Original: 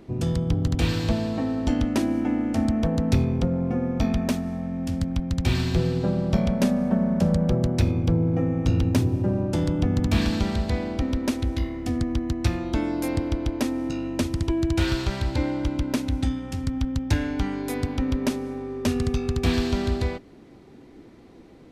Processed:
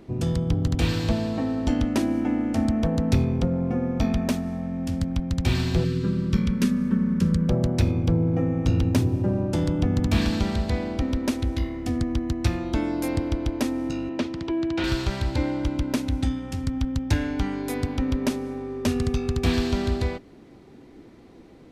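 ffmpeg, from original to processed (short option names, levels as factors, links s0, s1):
-filter_complex "[0:a]asettb=1/sr,asplit=3[s0][s1][s2];[s0]atrim=end=5.844[s3];[s1]atrim=start=5.84:end=7.49,asetpts=PTS-STARTPTS,afade=t=in:d=0.004:c=qsin,afade=t=out:st=1.646:d=0.004:c=qsin,asuperstop=centerf=690:order=4:qfactor=1[s4];[s2]atrim=start=7.486[s5];[s3][s4]acrossfade=d=0.004:c1=hsin:c2=qsin[s6];[s6][s5]acrossfade=d=0.004:c1=qsin:c2=hsin,asettb=1/sr,asplit=3[s7][s8][s9];[s7]atrim=end=14.094[s10];[s8]atrim=start=14.09:end=14.84,asetpts=PTS-STARTPTS,afade=t=in:d=0.004:c=qsin,afade=t=out:st=0.746:d=0.004:c=qsin,acrossover=split=170 5100:gain=0.141 1 0.0708[s11][s12][s13];[s11][s12][s13]amix=inputs=3:normalize=0[s14];[s9]atrim=start=14.836[s15];[s10][s14]acrossfade=d=0.004:c1=hsin:c2=qsin[s16];[s16][s15]acrossfade=d=0.004:c1=qsin:c2=hsin"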